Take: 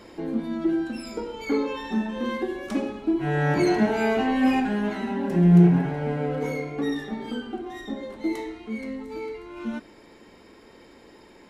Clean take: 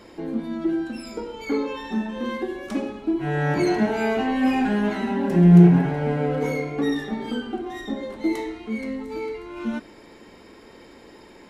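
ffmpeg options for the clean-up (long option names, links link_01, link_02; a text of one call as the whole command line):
ffmpeg -i in.wav -af "asetnsamples=nb_out_samples=441:pad=0,asendcmd='4.6 volume volume 3.5dB',volume=0dB" out.wav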